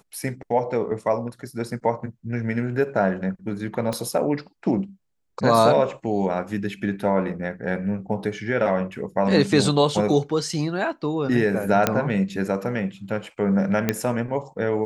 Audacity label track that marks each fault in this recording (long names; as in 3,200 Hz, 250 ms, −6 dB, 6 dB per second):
3.930000	3.930000	click −14 dBFS
11.870000	11.870000	click −3 dBFS
13.890000	13.890000	click −6 dBFS